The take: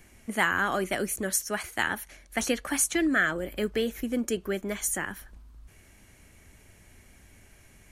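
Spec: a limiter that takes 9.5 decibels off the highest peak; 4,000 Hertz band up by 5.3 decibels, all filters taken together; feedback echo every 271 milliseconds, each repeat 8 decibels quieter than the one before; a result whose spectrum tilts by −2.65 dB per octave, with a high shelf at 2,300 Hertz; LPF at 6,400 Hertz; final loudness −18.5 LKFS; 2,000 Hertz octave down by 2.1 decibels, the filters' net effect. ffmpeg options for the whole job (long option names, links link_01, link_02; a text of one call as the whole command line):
ffmpeg -i in.wav -af "lowpass=6400,equalizer=frequency=2000:width_type=o:gain=-6,highshelf=frequency=2300:gain=5,equalizer=frequency=4000:width_type=o:gain=6,alimiter=limit=-19.5dB:level=0:latency=1,aecho=1:1:271|542|813|1084|1355:0.398|0.159|0.0637|0.0255|0.0102,volume=12dB" out.wav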